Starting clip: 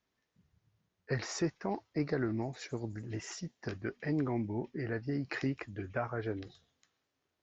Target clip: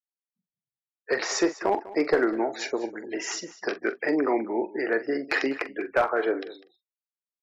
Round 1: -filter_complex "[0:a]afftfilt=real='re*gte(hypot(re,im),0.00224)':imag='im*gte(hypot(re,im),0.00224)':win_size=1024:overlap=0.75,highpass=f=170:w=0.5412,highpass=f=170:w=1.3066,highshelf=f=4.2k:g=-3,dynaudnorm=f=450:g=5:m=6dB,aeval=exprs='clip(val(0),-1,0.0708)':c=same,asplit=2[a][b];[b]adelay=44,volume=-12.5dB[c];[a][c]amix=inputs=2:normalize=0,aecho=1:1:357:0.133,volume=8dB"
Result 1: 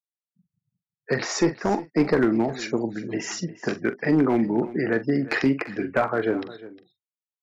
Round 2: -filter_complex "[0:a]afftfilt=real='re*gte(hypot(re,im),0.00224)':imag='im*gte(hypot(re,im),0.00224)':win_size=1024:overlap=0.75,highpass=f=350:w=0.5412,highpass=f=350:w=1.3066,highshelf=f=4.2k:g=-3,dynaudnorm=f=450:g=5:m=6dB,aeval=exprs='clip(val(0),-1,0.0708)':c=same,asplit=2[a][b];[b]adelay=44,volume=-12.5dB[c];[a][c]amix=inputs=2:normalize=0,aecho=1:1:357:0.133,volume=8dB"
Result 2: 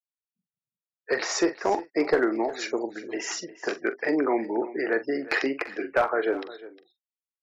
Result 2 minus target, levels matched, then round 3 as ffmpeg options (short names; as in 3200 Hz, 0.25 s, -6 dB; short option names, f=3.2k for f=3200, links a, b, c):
echo 0.158 s late
-filter_complex "[0:a]afftfilt=real='re*gte(hypot(re,im),0.00224)':imag='im*gte(hypot(re,im),0.00224)':win_size=1024:overlap=0.75,highpass=f=350:w=0.5412,highpass=f=350:w=1.3066,highshelf=f=4.2k:g=-3,dynaudnorm=f=450:g=5:m=6dB,aeval=exprs='clip(val(0),-1,0.0708)':c=same,asplit=2[a][b];[b]adelay=44,volume=-12.5dB[c];[a][c]amix=inputs=2:normalize=0,aecho=1:1:199:0.133,volume=8dB"